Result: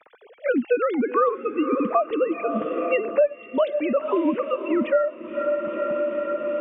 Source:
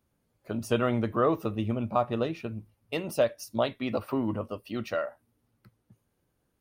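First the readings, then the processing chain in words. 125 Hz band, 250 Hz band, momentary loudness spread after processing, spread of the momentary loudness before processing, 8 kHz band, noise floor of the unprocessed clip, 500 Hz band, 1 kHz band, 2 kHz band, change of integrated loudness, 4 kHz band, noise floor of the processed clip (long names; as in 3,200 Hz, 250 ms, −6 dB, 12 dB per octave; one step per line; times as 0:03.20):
below −10 dB, +6.0 dB, 5 LU, 10 LU, below −30 dB, −76 dBFS, +9.0 dB, +7.0 dB, +7.0 dB, +6.5 dB, can't be measured, −50 dBFS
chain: three sine waves on the formant tracks
feedback delay with all-pass diffusion 499 ms, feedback 52%, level −14 dB
multiband upward and downward compressor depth 100%
level +7.5 dB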